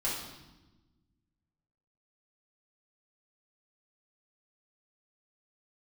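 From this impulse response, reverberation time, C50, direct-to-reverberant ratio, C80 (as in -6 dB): 1.1 s, 2.0 dB, -7.5 dB, 5.0 dB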